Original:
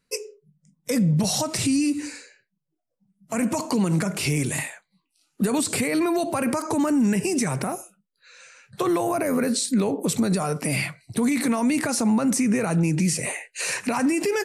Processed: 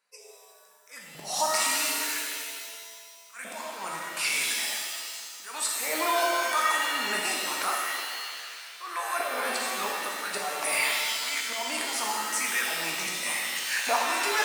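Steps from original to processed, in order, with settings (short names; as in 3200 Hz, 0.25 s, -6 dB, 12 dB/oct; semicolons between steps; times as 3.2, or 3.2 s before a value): LFO high-pass saw up 0.87 Hz 720–1500 Hz; auto swell 0.261 s; shimmer reverb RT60 1.9 s, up +7 st, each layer -2 dB, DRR -1.5 dB; gain -2.5 dB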